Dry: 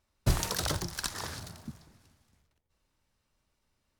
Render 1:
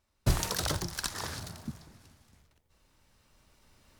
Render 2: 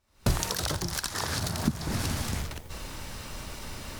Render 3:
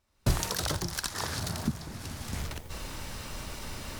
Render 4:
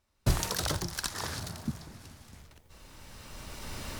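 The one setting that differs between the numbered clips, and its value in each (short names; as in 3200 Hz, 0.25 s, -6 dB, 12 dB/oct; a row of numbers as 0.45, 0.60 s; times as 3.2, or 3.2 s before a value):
recorder AGC, rising by: 5.4, 86, 35, 14 dB/s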